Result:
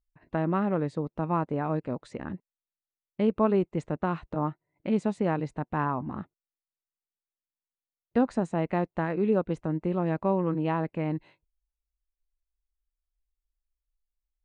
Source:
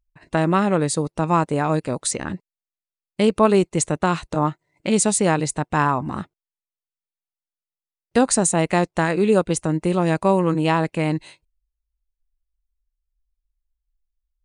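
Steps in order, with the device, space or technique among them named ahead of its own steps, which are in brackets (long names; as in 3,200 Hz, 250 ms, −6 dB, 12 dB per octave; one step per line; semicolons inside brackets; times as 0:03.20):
phone in a pocket (low-pass filter 3,000 Hz 12 dB per octave; parametric band 240 Hz +3.5 dB 0.36 octaves; high-shelf EQ 2,300 Hz −10.5 dB)
level −8 dB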